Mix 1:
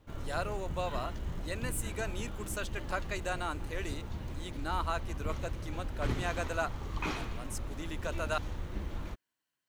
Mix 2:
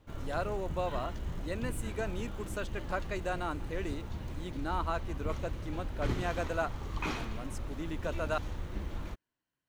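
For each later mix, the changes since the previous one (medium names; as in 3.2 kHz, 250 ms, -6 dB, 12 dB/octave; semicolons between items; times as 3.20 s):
speech: add tilt EQ -2.5 dB/octave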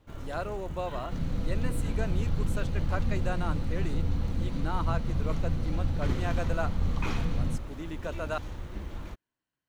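second sound: unmuted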